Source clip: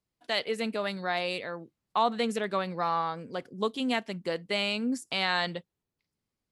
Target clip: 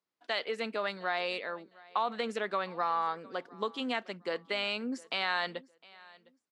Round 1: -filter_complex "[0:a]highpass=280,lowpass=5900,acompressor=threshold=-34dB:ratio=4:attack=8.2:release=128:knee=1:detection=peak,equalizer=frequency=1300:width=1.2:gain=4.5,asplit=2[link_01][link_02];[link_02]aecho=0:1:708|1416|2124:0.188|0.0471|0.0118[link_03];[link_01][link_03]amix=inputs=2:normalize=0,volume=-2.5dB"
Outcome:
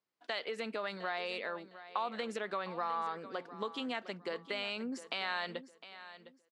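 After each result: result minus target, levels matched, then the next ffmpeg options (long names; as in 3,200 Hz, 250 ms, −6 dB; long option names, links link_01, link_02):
echo-to-direct +8.5 dB; downward compressor: peak gain reduction +5 dB
-filter_complex "[0:a]highpass=280,lowpass=5900,acompressor=threshold=-34dB:ratio=4:attack=8.2:release=128:knee=1:detection=peak,equalizer=frequency=1300:width=1.2:gain=4.5,asplit=2[link_01][link_02];[link_02]aecho=0:1:708|1416:0.0708|0.0177[link_03];[link_01][link_03]amix=inputs=2:normalize=0,volume=-2.5dB"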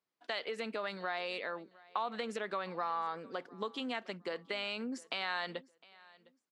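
downward compressor: peak gain reduction +5 dB
-filter_complex "[0:a]highpass=280,lowpass=5900,acompressor=threshold=-27dB:ratio=4:attack=8.2:release=128:knee=1:detection=peak,equalizer=frequency=1300:width=1.2:gain=4.5,asplit=2[link_01][link_02];[link_02]aecho=0:1:708|1416:0.0708|0.0177[link_03];[link_01][link_03]amix=inputs=2:normalize=0,volume=-2.5dB"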